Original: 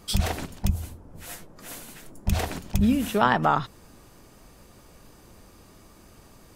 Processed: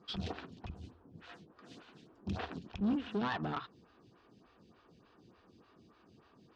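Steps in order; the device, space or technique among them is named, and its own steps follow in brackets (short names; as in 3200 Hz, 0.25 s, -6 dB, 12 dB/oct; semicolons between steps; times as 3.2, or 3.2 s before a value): vibe pedal into a guitar amplifier (photocell phaser 3.4 Hz; tube stage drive 25 dB, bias 0.55; speaker cabinet 100–4300 Hz, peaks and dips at 580 Hz -9 dB, 870 Hz -5 dB, 2100 Hz -7 dB); gain -2.5 dB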